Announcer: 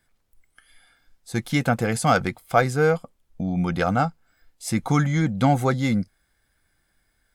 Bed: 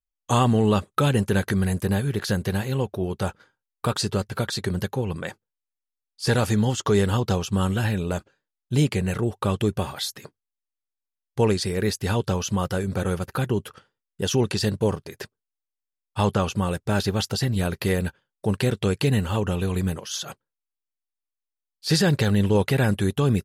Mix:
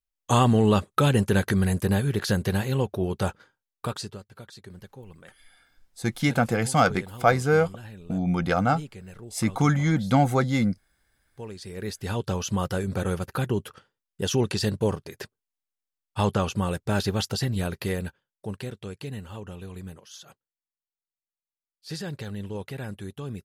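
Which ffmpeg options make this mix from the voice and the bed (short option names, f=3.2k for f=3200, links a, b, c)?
-filter_complex "[0:a]adelay=4700,volume=-1dB[a];[1:a]volume=16.5dB,afade=t=out:st=3.45:d=0.75:silence=0.11885,afade=t=in:st=11.52:d=1:silence=0.149624,afade=t=out:st=17.28:d=1.5:silence=0.237137[b];[a][b]amix=inputs=2:normalize=0"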